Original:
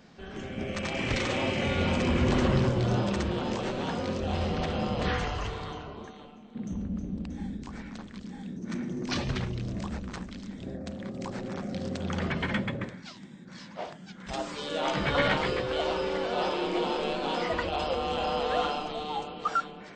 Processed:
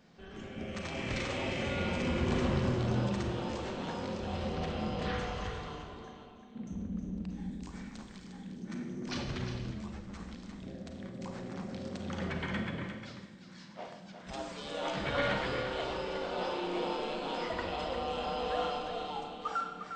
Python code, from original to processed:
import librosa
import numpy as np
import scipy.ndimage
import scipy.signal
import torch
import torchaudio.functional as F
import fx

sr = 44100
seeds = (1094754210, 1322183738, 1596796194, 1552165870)

y = fx.high_shelf(x, sr, hz=5800.0, db=11.5, at=(7.51, 8.27))
y = y + 10.0 ** (-8.5 / 20.0) * np.pad(y, (int(354 * sr / 1000.0), 0))[:len(y)]
y = fx.rev_schroeder(y, sr, rt60_s=0.92, comb_ms=33, drr_db=5.5)
y = fx.ensemble(y, sr, at=(9.71, 10.2))
y = y * librosa.db_to_amplitude(-7.5)